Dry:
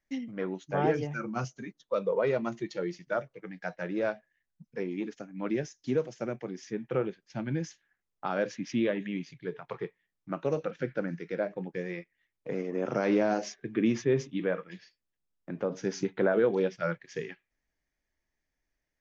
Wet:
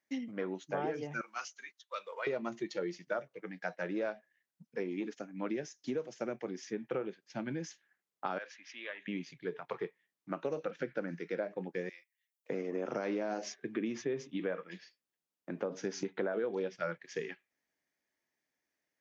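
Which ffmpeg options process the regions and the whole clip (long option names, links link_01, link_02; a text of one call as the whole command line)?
ffmpeg -i in.wav -filter_complex "[0:a]asettb=1/sr,asplit=3[link_01][link_02][link_03];[link_01]atrim=end=1.214[link_04];[link_02]atrim=start=1.21:end=2.27,asetpts=PTS-STARTPTS,afade=type=in:duration=0.004:curve=qsin,afade=type=out:start_time=1.056:duration=0.004:curve=qsin,highpass=1400,equalizer=frequency=2700:width_type=o:width=2:gain=3[link_05];[link_03]atrim=start=2.266[link_06];[link_04][link_05]acrossfade=duration=0.004:curve1=hsin:curve2=qsin[link_07];[link_07][link_06]acrossfade=duration=0.004:curve1=qsin:curve2=hsin,asettb=1/sr,asplit=3[link_08][link_09][link_10];[link_08]atrim=end=8.384[link_11];[link_09]atrim=start=8.38:end=9.08,asetpts=PTS-STARTPTS,afade=type=in:duration=0.004:curve=qsin,afade=type=out:start_time=0.696:duration=0.004:curve=qsin,highpass=1400,aemphasis=mode=reproduction:type=75kf[link_12];[link_10]atrim=start=9.076[link_13];[link_11][link_12]acrossfade=duration=0.004:curve1=hsin:curve2=qsin[link_14];[link_14][link_13]acrossfade=duration=0.004:curve1=qsin:curve2=hsin,asettb=1/sr,asplit=3[link_15][link_16][link_17];[link_15]atrim=end=11.894[link_18];[link_16]atrim=start=11.89:end=12.5,asetpts=PTS-STARTPTS,afade=type=in:duration=0.004:curve=qsin,afade=type=out:start_time=0.606:duration=0.004:curve=qsin,highpass=frequency=780:poles=1,aderivative[link_19];[link_17]atrim=start=12.496[link_20];[link_18][link_19]acrossfade=duration=0.004:curve1=hsin:curve2=qsin[link_21];[link_21][link_20]acrossfade=duration=0.004:curve1=qsin:curve2=hsin,acompressor=threshold=-31dB:ratio=6,highpass=210" out.wav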